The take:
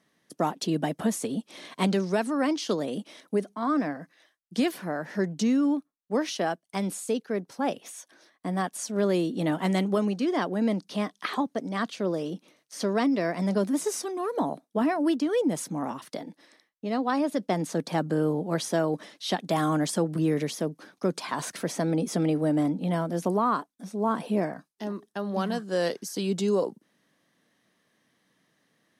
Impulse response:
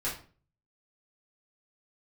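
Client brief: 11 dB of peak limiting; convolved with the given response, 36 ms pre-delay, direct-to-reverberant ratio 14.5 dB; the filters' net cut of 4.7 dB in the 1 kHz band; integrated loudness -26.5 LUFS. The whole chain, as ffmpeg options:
-filter_complex "[0:a]equalizer=f=1000:t=o:g=-6.5,alimiter=level_in=1.19:limit=0.0631:level=0:latency=1,volume=0.841,asplit=2[s0][s1];[1:a]atrim=start_sample=2205,adelay=36[s2];[s1][s2]afir=irnorm=-1:irlink=0,volume=0.1[s3];[s0][s3]amix=inputs=2:normalize=0,volume=2.51"

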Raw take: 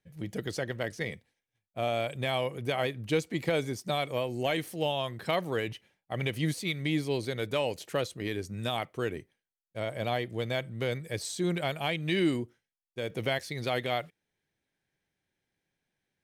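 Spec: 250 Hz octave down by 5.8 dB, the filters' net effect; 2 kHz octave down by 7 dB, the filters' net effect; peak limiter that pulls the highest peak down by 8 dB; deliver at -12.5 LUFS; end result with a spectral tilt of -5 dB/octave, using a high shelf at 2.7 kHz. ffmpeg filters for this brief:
-af "equalizer=f=250:t=o:g=-9,equalizer=f=2000:t=o:g=-5,highshelf=f=2700:g=-7.5,volume=20,alimiter=limit=0.841:level=0:latency=1"

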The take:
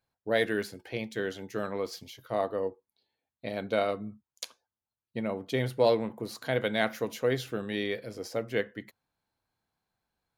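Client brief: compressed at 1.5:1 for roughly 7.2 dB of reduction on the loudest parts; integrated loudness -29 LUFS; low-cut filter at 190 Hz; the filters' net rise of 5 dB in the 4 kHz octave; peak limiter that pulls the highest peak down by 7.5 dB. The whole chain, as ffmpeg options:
-af "highpass=190,equalizer=f=4000:t=o:g=6,acompressor=threshold=0.0112:ratio=1.5,volume=2.99,alimiter=limit=0.178:level=0:latency=1"

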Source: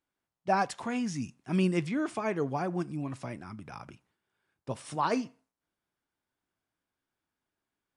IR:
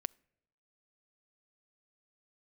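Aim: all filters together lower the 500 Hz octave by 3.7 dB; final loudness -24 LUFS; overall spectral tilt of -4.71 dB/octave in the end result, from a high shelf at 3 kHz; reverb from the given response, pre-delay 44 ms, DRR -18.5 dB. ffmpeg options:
-filter_complex "[0:a]equalizer=f=500:t=o:g=-5.5,highshelf=f=3000:g=8.5,asplit=2[s0][s1];[1:a]atrim=start_sample=2205,adelay=44[s2];[s1][s2]afir=irnorm=-1:irlink=0,volume=10[s3];[s0][s3]amix=inputs=2:normalize=0,volume=0.335"

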